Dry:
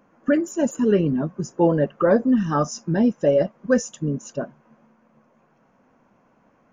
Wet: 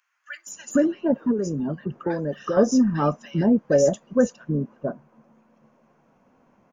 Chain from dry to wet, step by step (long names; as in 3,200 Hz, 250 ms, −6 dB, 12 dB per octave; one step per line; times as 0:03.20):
0:00.85–0:02.10: downward compressor, threshold −23 dBFS, peak gain reduction 10.5 dB
multiband delay without the direct sound highs, lows 470 ms, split 1,600 Hz